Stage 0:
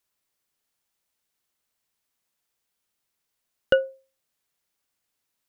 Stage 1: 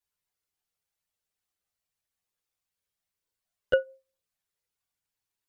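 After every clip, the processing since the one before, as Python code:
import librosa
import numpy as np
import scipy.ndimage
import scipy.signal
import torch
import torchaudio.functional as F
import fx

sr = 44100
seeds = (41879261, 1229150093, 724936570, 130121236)

y = fx.chorus_voices(x, sr, voices=6, hz=0.56, base_ms=11, depth_ms=1.4, mix_pct=60)
y = F.gain(torch.from_numpy(y), -5.0).numpy()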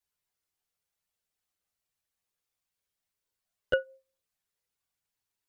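y = fx.dynamic_eq(x, sr, hz=500.0, q=2.4, threshold_db=-33.0, ratio=4.0, max_db=-5)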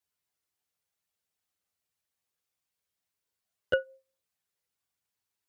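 y = scipy.signal.sosfilt(scipy.signal.butter(2, 55.0, 'highpass', fs=sr, output='sos'), x)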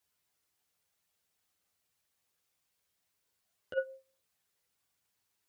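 y = fx.over_compress(x, sr, threshold_db=-31.0, ratio=-0.5)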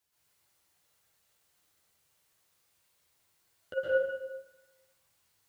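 y = fx.rev_plate(x, sr, seeds[0], rt60_s=1.1, hf_ratio=0.85, predelay_ms=105, drr_db=-8.0)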